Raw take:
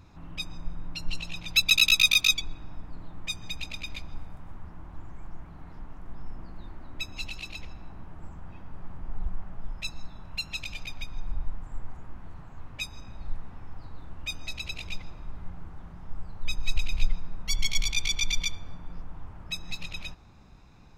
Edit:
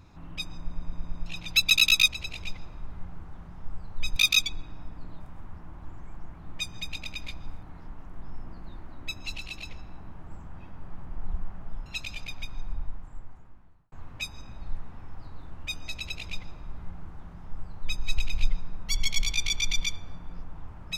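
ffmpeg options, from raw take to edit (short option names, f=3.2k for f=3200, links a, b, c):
-filter_complex "[0:a]asplit=14[a][b][c][d][e][f][g][h][i][j][k][l][m][n];[a]atrim=end=0.712[o];[b]atrim=start=0.598:end=0.712[p];[c]atrim=start=0.598:end=0.712[q];[d]atrim=start=0.598:end=0.712[r];[e]atrim=start=0.598:end=0.712[s];[f]atrim=start=0.598:end=0.712[t];[g]atrim=start=1.258:end=2.082[u];[h]atrim=start=14.528:end=16.612[v];[i]atrim=start=2.078:end=3.122[w];[j]atrim=start=4.308:end=5.552[x];[k]atrim=start=3.118:end=4.312[y];[l]atrim=start=5.548:end=9.782[z];[m]atrim=start=10.448:end=12.51,asetpts=PTS-STARTPTS,afade=t=out:st=0.692:d=1.37[aa];[n]atrim=start=12.51,asetpts=PTS-STARTPTS,afade=t=in:d=0.004:c=hsin[ab];[o][p]acrossfade=d=0.004:c1=hsin:c2=hsin[ac];[ac][q]acrossfade=d=0.004:c1=hsin:c2=hsin[ad];[ad][r]acrossfade=d=0.004:c1=hsin:c2=hsin[ae];[ae][s]acrossfade=d=0.004:c1=hsin:c2=hsin[af];[af][t]acrossfade=d=0.004:c1=hsin:c2=hsin[ag];[ag][u]acrossfade=d=0.004:c1=hsin:c2=hsin[ah];[ah][v]acrossfade=d=0.004:c1=hsin:c2=hsin[ai];[ai][w]acrossfade=d=0.004:c1=hsin:c2=hsin[aj];[aj][x]acrossfade=d=0.004:c1=hsin:c2=hsin[ak];[ak][y]acrossfade=d=0.004:c1=hsin:c2=hsin[al];[al][z]acrossfade=d=0.004:c1=hsin:c2=hsin[am];[aa][ab]concat=n=2:v=0:a=1[an];[am][an]acrossfade=d=0.004:c1=hsin:c2=hsin"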